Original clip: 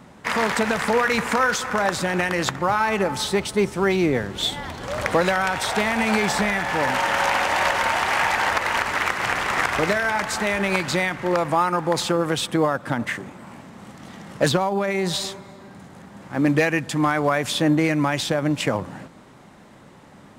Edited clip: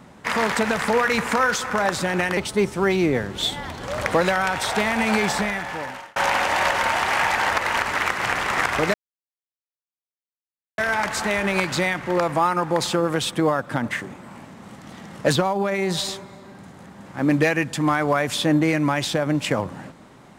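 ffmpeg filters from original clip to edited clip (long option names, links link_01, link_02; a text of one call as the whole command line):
ffmpeg -i in.wav -filter_complex "[0:a]asplit=4[link_01][link_02][link_03][link_04];[link_01]atrim=end=2.372[link_05];[link_02]atrim=start=3.368:end=7.16,asetpts=PTS-STARTPTS,afade=type=out:start_time=2.872:duration=0.92[link_06];[link_03]atrim=start=7.16:end=9.94,asetpts=PTS-STARTPTS,afade=type=in:duration=0.004:curve=hsin,afade=type=out:start_time=2.776:duration=0.004:curve=hsin,apad=pad_dur=1.84[link_07];[link_04]atrim=start=9.94,asetpts=PTS-STARTPTS,afade=type=in:duration=0.004:curve=hsin[link_08];[link_06][link_07][link_08]concat=n=3:v=0:a=1[link_09];[link_05][link_09]acrossfade=duration=0.004:curve1=hsin:curve2=hsin" out.wav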